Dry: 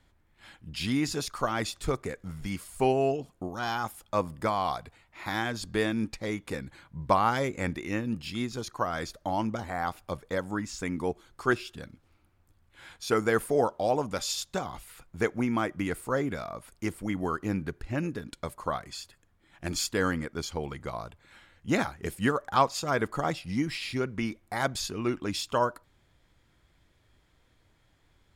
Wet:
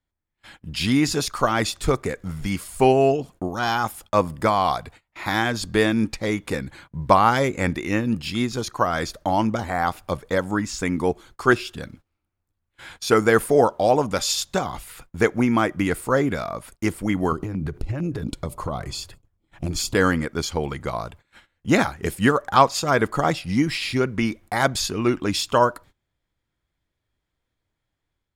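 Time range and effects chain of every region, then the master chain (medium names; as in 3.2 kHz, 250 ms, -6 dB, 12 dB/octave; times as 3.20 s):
17.32–19.95 s: bass shelf 480 Hz +11 dB + compression 12:1, threshold -29 dBFS + LFO notch square 4.4 Hz 230–1700 Hz
whole clip: gate -53 dBFS, range -22 dB; level rider gain up to 5 dB; trim +3.5 dB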